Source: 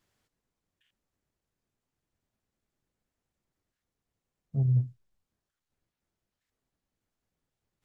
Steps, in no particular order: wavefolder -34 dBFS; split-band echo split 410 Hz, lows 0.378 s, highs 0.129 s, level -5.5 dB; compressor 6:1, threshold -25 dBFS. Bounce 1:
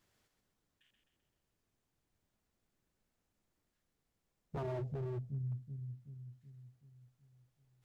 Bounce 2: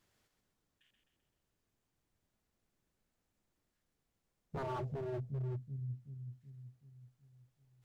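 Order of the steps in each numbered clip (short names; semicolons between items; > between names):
compressor > split-band echo > wavefolder; split-band echo > wavefolder > compressor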